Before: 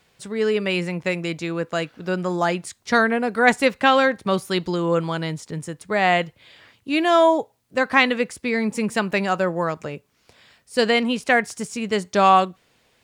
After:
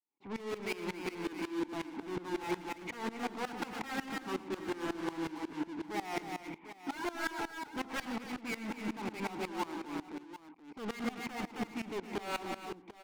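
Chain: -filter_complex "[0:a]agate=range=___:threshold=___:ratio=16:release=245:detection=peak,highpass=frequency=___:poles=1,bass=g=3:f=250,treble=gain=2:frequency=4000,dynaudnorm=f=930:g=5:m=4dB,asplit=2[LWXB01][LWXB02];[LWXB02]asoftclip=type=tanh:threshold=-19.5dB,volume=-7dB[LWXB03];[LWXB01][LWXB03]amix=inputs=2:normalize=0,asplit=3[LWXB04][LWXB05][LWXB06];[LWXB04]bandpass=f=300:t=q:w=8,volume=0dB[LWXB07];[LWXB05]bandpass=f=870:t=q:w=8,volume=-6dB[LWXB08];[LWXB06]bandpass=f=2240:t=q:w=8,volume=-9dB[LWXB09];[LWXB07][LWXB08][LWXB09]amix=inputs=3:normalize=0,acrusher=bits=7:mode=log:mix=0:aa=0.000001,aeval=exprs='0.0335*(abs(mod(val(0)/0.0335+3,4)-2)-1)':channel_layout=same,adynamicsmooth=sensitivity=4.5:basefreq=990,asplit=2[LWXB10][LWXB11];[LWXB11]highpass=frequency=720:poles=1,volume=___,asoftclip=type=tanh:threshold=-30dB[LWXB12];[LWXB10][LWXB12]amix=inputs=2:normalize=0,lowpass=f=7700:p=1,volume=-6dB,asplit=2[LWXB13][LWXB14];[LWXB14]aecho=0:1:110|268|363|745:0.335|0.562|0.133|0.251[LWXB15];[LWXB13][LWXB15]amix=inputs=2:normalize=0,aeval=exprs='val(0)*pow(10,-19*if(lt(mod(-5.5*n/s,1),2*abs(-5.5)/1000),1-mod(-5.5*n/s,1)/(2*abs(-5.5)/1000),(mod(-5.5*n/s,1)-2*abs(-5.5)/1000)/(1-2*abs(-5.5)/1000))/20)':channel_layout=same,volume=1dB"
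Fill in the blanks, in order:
-35dB, -49dB, 170, 33dB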